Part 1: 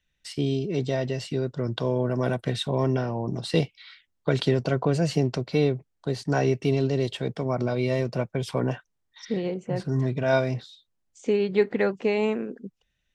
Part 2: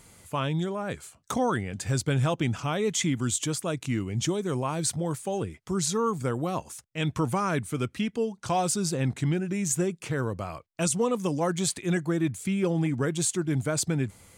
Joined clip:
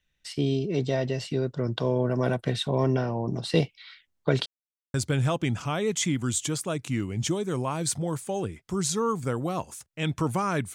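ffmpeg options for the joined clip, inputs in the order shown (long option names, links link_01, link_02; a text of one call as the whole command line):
ffmpeg -i cue0.wav -i cue1.wav -filter_complex "[0:a]apad=whole_dur=10.74,atrim=end=10.74,asplit=2[link_01][link_02];[link_01]atrim=end=4.46,asetpts=PTS-STARTPTS,afade=type=out:start_time=4.456:duration=0.004:curve=hsin[link_03];[link_02]atrim=start=4.46:end=4.94,asetpts=PTS-STARTPTS,volume=0[link_04];[1:a]atrim=start=1.92:end=7.72,asetpts=PTS-STARTPTS,afade=type=in:duration=0.004:curve=hsin[link_05];[link_03][link_04][link_05]concat=n=3:v=0:a=1" out.wav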